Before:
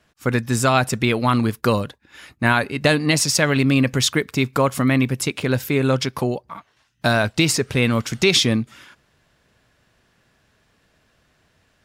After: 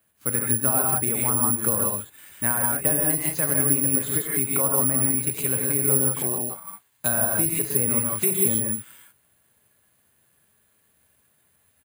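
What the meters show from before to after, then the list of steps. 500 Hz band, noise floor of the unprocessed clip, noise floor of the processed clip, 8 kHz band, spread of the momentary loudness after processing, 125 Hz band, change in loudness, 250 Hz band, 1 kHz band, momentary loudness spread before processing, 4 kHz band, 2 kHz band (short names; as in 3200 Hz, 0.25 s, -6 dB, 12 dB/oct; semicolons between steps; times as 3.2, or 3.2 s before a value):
-8.0 dB, -63 dBFS, -66 dBFS, +6.0 dB, 8 LU, -9.0 dB, -1.5 dB, -9.0 dB, -8.5 dB, 7 LU, -21.0 dB, -12.5 dB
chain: HPF 70 Hz 24 dB/oct; non-linear reverb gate 0.2 s rising, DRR -1.5 dB; downsampling 11025 Hz; treble ducked by the level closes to 1300 Hz, closed at -12 dBFS; careless resampling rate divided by 4×, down none, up zero stuff; gain -11.5 dB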